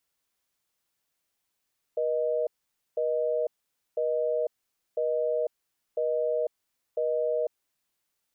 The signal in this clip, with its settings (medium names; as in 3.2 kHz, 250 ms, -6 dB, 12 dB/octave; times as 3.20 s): call progress tone busy tone, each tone -27 dBFS 5.63 s